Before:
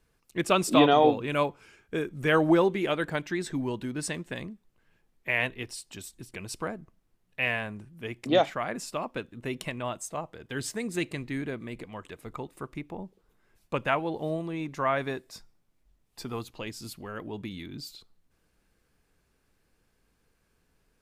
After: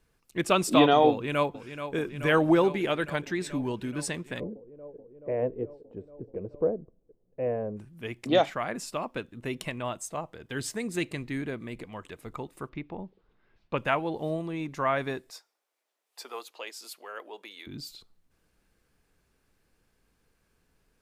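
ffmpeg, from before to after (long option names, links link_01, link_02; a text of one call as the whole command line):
ffmpeg -i in.wav -filter_complex "[0:a]asplit=2[link_01][link_02];[link_02]afade=type=in:start_time=1.11:duration=0.01,afade=type=out:start_time=1.95:duration=0.01,aecho=0:1:430|860|1290|1720|2150|2580|3010|3440|3870|4300|4730|5160:0.316228|0.252982|0.202386|0.161909|0.129527|0.103622|0.0828972|0.0663178|0.0530542|0.0424434|0.0339547|0.0271638[link_03];[link_01][link_03]amix=inputs=2:normalize=0,asplit=3[link_04][link_05][link_06];[link_04]afade=type=out:start_time=4.39:duration=0.02[link_07];[link_05]lowpass=frequency=490:width_type=q:width=4.3,afade=type=in:start_time=4.39:duration=0.02,afade=type=out:start_time=7.76:duration=0.02[link_08];[link_06]afade=type=in:start_time=7.76:duration=0.02[link_09];[link_07][link_08][link_09]amix=inputs=3:normalize=0,asettb=1/sr,asplit=3[link_10][link_11][link_12];[link_10]atrim=end=12.694[link_13];[link_11]atrim=start=12.69:end=13.78,asetpts=PTS-STARTPTS,afade=type=in:duration=0.004:curve=qsin,afade=type=out:start_time=1.086:duration=0.004:curve=qsin,lowpass=frequency=4300:width=0.5412,lowpass=frequency=4300:width=1.3066[link_14];[link_12]atrim=start=13.776[link_15];[link_13][link_14]acrossfade=duration=0.004:curve1=hsin:curve2=qsin[link_16];[link_16][link_15]acrossfade=duration=0.004:curve1=qsin:curve2=hsin,asettb=1/sr,asplit=3[link_17][link_18][link_19];[link_17]atrim=end=15.304[link_20];[link_18]atrim=start=15.3:end=17.67,asetpts=PTS-STARTPTS,afade=type=in:duration=0.004:curve=qsin,afade=type=out:start_time=2.366:duration=0.004:curve=qsin,highpass=frequency=460:width=0.5412,highpass=frequency=460:width=1.3066[link_21];[link_19]atrim=start=17.666[link_22];[link_20][link_21]acrossfade=duration=0.004:curve1=hsin:curve2=qsin[link_23];[link_23][link_22]acrossfade=duration=0.004:curve1=qsin:curve2=hsin" out.wav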